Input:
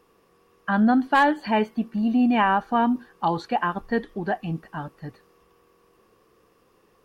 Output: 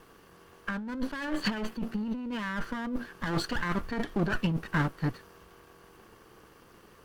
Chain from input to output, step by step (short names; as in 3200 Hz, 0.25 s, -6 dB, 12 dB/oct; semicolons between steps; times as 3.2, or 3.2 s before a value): minimum comb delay 0.65 ms; negative-ratio compressor -31 dBFS, ratio -1